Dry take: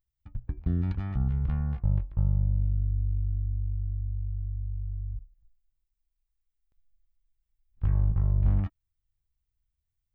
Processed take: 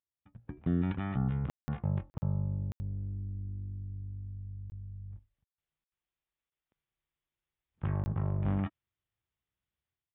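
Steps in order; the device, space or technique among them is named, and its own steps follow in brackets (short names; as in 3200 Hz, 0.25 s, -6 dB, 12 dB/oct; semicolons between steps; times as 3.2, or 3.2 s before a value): call with lost packets (HPF 180 Hz 12 dB/oct; downsampling 8000 Hz; AGC gain up to 13 dB; packet loss packets of 20 ms bursts); gain -8 dB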